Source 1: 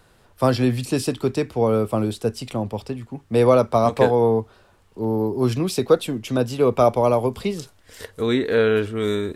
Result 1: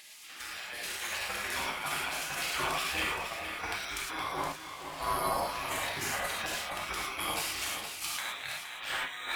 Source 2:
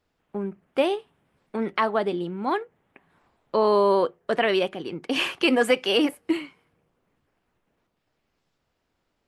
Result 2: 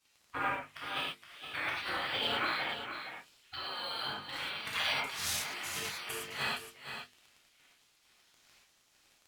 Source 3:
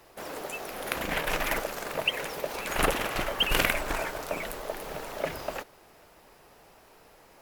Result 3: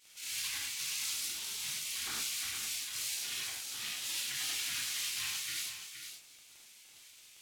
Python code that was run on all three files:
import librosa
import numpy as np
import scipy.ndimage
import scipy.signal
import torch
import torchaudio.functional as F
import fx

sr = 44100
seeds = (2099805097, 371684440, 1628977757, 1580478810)

p1 = fx.spec_gate(x, sr, threshold_db=-25, keep='weak')
p2 = scipy.signal.sosfilt(scipy.signal.butter(2, 49.0, 'highpass', fs=sr, output='sos'), p1)
p3 = fx.peak_eq(p2, sr, hz=2200.0, db=5.5, octaves=1.7)
p4 = fx.hum_notches(p3, sr, base_hz=50, count=9)
p5 = fx.over_compress(p4, sr, threshold_db=-48.0, ratio=-1.0)
p6 = fx.dmg_crackle(p5, sr, seeds[0], per_s=20.0, level_db=-51.0)
p7 = p6 + fx.echo_single(p6, sr, ms=468, db=-8.5, dry=0)
p8 = fx.rev_gated(p7, sr, seeds[1], gate_ms=140, shape='flat', drr_db=-5.0)
p9 = np.interp(np.arange(len(p8)), np.arange(len(p8))[::2], p8[::2])
y = p9 * 10.0 ** (4.5 / 20.0)